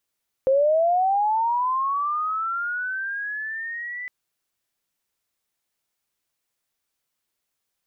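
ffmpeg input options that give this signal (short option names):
-f lavfi -i "aevalsrc='pow(10,(-15-15*t/3.61)/20)*sin(2*PI*(520*t+1480*t*t/(2*3.61)))':d=3.61:s=44100"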